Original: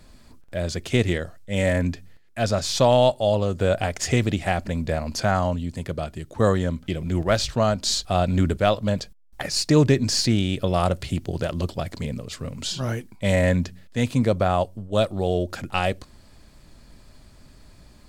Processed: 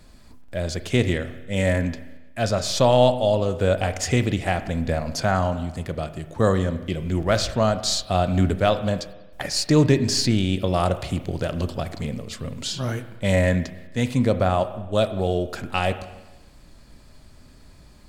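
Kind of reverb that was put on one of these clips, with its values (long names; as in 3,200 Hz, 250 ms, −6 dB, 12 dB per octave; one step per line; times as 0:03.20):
spring reverb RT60 1.1 s, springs 32/36 ms, chirp 65 ms, DRR 10.5 dB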